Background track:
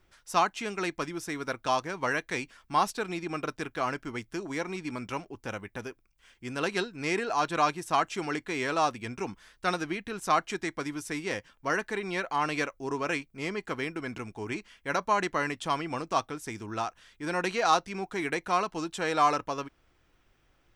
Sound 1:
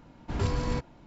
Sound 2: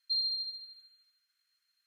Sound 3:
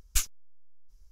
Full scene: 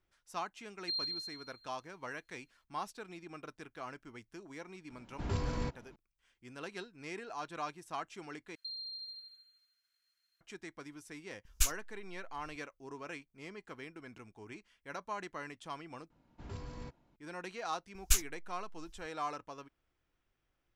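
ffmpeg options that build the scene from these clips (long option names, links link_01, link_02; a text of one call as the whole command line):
ffmpeg -i bed.wav -i cue0.wav -i cue1.wav -i cue2.wav -filter_complex "[2:a]asplit=2[link_01][link_02];[1:a]asplit=2[link_03][link_04];[3:a]asplit=2[link_05][link_06];[0:a]volume=-14.5dB[link_07];[link_02]acompressor=threshold=-45dB:ratio=4:attack=22:release=32:knee=1:detection=peak[link_08];[link_07]asplit=3[link_09][link_10][link_11];[link_09]atrim=end=8.554[link_12];[link_08]atrim=end=1.86,asetpts=PTS-STARTPTS,volume=-2dB[link_13];[link_10]atrim=start=10.406:end=16.104[link_14];[link_04]atrim=end=1.06,asetpts=PTS-STARTPTS,volume=-16.5dB[link_15];[link_11]atrim=start=17.156[link_16];[link_01]atrim=end=1.86,asetpts=PTS-STARTPTS,volume=-5.5dB,afade=type=in:duration=0.004:curve=hsin,afade=type=out:start_time=1.856:duration=0.004:curve=hsin,adelay=780[link_17];[link_03]atrim=end=1.06,asetpts=PTS-STARTPTS,volume=-6.5dB,afade=type=in:duration=0.004:curve=hsin,afade=type=out:start_time=1.056:duration=0.004:curve=hsin,adelay=4900[link_18];[link_05]atrim=end=1.11,asetpts=PTS-STARTPTS,volume=-3dB,afade=type=in:duration=0.004:curve=hsin,afade=type=out:start_time=1.106:duration=0.004:curve=hsin,adelay=11450[link_19];[link_06]atrim=end=1.11,asetpts=PTS-STARTPTS,volume=-1dB,afade=type=in:duration=0.004:curve=hsin,afade=type=out:start_time=1.106:duration=0.004:curve=hsin,adelay=17950[link_20];[link_12][link_13]acrossfade=duration=0.004:curve1=hsin:curve2=hsin[link_21];[link_21][link_14]acrossfade=duration=0.004:curve1=hsin:curve2=hsin[link_22];[link_22][link_15]acrossfade=duration=0.004:curve1=hsin:curve2=hsin[link_23];[link_23][link_16]acrossfade=duration=0.004:curve1=hsin:curve2=hsin[link_24];[link_24][link_17][link_18][link_19][link_20]amix=inputs=5:normalize=0" out.wav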